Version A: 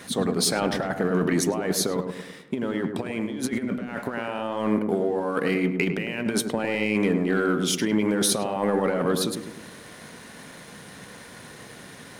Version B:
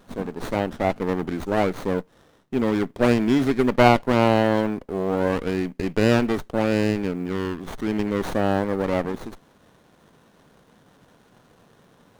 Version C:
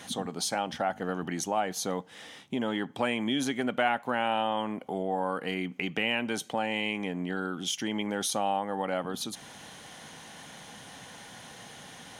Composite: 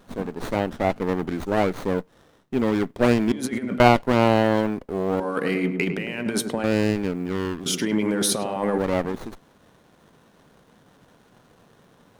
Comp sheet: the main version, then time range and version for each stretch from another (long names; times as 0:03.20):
B
0:03.32–0:03.80: punch in from A
0:05.20–0:06.64: punch in from A
0:07.66–0:08.78: punch in from A
not used: C